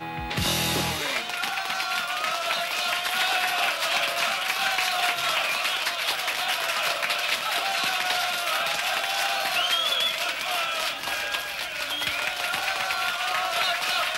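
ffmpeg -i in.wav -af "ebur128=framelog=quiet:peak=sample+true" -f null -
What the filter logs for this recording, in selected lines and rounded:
Integrated loudness:
  I:         -24.4 LUFS
  Threshold: -34.4 LUFS
Loudness range:
  LRA:         2.2 LU
  Threshold: -44.3 LUFS
  LRA low:   -25.7 LUFS
  LRA high:  -23.4 LUFS
Sample peak:
  Peak:      -12.7 dBFS
True peak:
  Peak:      -12.7 dBFS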